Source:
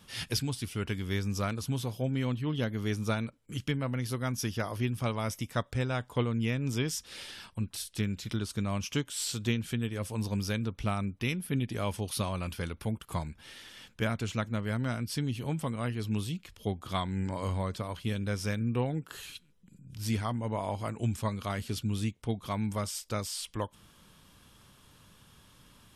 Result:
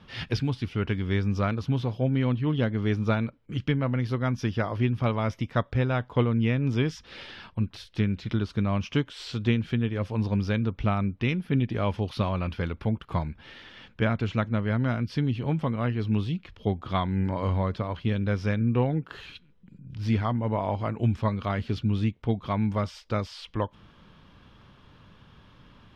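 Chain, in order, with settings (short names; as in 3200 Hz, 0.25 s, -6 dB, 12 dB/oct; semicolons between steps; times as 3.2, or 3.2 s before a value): air absorption 270 m; gain +6.5 dB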